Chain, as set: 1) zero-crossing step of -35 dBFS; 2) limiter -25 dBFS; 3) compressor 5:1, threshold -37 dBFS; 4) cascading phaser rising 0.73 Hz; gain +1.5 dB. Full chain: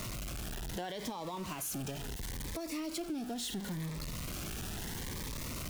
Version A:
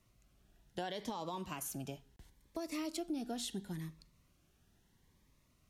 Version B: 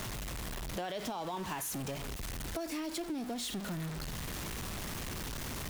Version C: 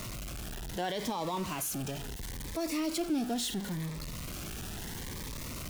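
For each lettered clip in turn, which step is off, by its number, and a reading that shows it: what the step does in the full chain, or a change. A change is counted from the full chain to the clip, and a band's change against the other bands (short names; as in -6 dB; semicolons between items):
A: 1, distortion -7 dB; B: 4, 1 kHz band +2.5 dB; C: 3, mean gain reduction 2.0 dB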